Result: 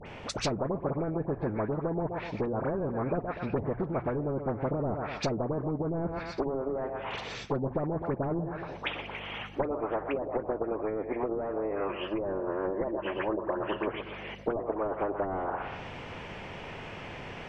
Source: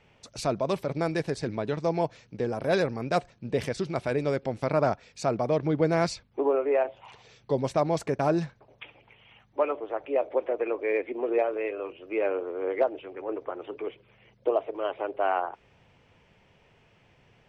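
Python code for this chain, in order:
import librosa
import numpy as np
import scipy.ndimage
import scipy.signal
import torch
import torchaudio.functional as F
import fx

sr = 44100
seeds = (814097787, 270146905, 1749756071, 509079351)

y = fx.ripple_eq(x, sr, per_octave=1.3, db=12, at=(11.88, 13.88))
y = fx.echo_feedback(y, sr, ms=123, feedback_pct=28, wet_db=-17.5)
y = np.clip(y, -10.0 ** (-22.5 / 20.0), 10.0 ** (-22.5 / 20.0))
y = fx.env_lowpass_down(y, sr, base_hz=380.0, full_db=-24.5)
y = fx.dispersion(y, sr, late='highs', ms=63.0, hz=1600.0)
y = fx.rider(y, sr, range_db=3, speed_s=0.5)
y = fx.env_lowpass_down(y, sr, base_hz=700.0, full_db=-27.0)
y = fx.high_shelf(y, sr, hz=3100.0, db=-10.0)
y = fx.hum_notches(y, sr, base_hz=60, count=2)
y = fx.spectral_comp(y, sr, ratio=2.0)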